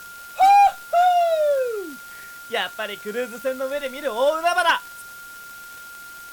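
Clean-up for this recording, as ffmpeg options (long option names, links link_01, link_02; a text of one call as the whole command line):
ffmpeg -i in.wav -af "adeclick=threshold=4,bandreject=frequency=1400:width=30,afwtdn=0.0056" out.wav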